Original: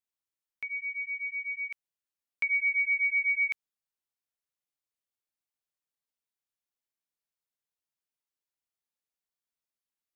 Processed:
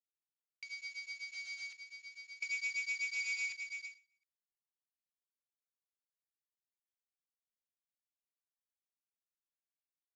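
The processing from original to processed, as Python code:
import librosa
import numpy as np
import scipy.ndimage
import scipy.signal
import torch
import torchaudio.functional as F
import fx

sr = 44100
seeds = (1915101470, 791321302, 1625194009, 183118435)

p1 = fx.cvsd(x, sr, bps=32000)
p2 = np.diff(p1, prepend=0.0)
p3 = fx.notch(p2, sr, hz=1800.0, q=29.0)
p4 = p3 + fx.echo_single(p3, sr, ms=711, db=-6.0, dry=0)
y = fx.end_taper(p4, sr, db_per_s=180.0)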